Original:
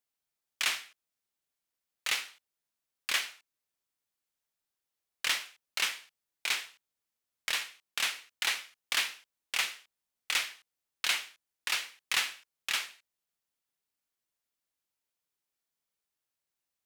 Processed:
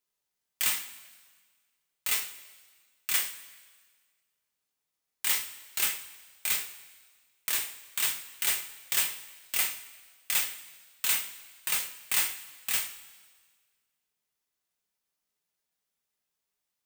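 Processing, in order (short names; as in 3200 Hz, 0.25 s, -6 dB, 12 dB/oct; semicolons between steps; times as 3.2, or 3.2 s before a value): careless resampling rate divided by 4×, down none, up zero stuff; two-slope reverb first 0.23 s, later 1.6 s, from -18 dB, DRR 1.5 dB; gain -5.5 dB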